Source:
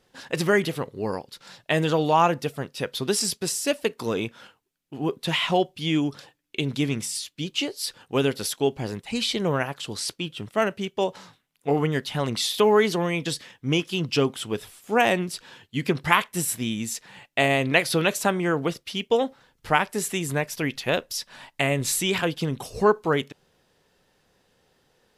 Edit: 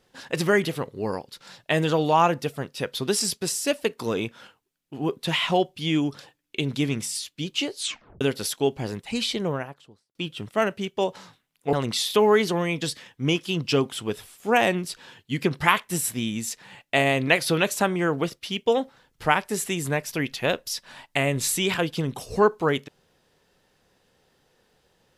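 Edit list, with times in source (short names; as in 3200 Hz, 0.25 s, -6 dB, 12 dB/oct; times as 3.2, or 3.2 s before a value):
7.75 tape stop 0.46 s
9.16–10.15 studio fade out
11.73–12.17 cut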